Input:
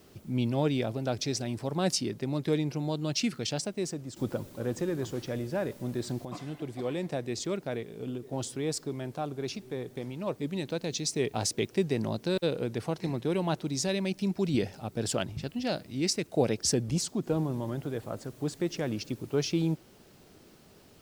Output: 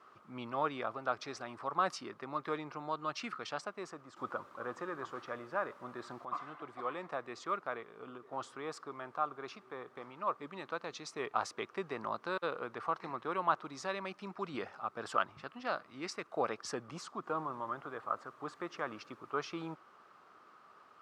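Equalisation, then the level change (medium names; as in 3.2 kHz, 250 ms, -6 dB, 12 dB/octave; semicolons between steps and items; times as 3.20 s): band-pass filter 1.2 kHz, Q 7; +14.5 dB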